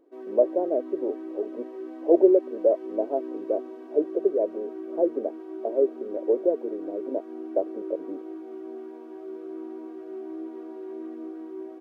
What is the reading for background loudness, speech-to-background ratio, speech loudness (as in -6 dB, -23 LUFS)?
-38.0 LUFS, 11.5 dB, -26.5 LUFS